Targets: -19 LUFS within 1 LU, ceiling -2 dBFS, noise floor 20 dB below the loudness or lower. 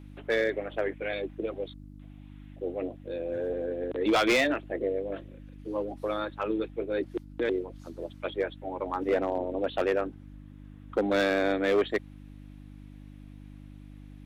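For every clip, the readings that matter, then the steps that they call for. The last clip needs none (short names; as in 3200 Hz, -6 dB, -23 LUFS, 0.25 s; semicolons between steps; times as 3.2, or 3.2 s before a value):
clipped 0.7%; flat tops at -19.0 dBFS; hum 50 Hz; harmonics up to 300 Hz; hum level -45 dBFS; loudness -30.0 LUFS; peak -19.0 dBFS; loudness target -19.0 LUFS
-> clip repair -19 dBFS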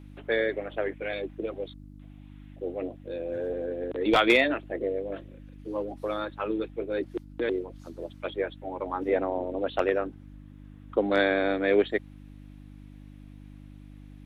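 clipped 0.0%; hum 50 Hz; harmonics up to 300 Hz; hum level -45 dBFS
-> de-hum 50 Hz, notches 6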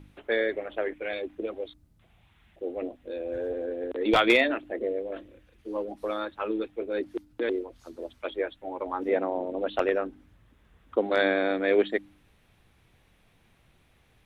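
hum none; loudness -29.0 LUFS; peak -9.5 dBFS; loudness target -19.0 LUFS
-> gain +10 dB; limiter -2 dBFS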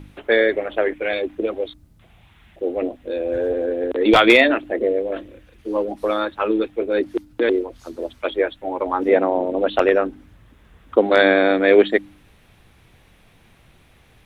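loudness -19.5 LUFS; peak -2.0 dBFS; noise floor -53 dBFS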